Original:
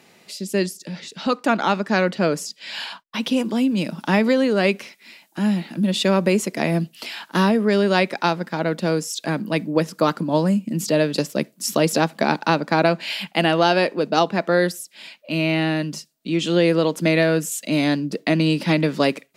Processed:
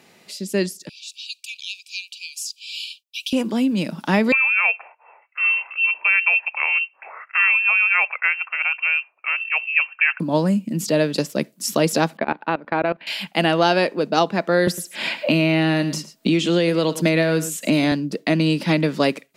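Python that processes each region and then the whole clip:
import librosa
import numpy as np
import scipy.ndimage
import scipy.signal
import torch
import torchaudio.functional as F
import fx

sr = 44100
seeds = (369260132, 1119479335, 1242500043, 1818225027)

y = fx.chain(x, sr, fx.brickwall_highpass(low_hz=2300.0),
    fx.high_shelf(hz=5200.0, db=3.5), at=(0.89, 3.33))
y = fx.chain(y, sr, fx.freq_invert(carrier_hz=2900),
    fx.highpass(hz=680.0, slope=24), at=(4.32, 10.2))
y = fx.chain(y, sr, fx.level_steps(step_db=19),
    fx.lowpass(hz=2900.0, slope=24),
    fx.peak_eq(hz=130.0, db=-7.0, octaves=1.3), at=(12.17, 13.07))
y = fx.chain(y, sr, fx.echo_single(ms=106, db=-16.0),
    fx.band_squash(depth_pct=100), at=(14.67, 17.92))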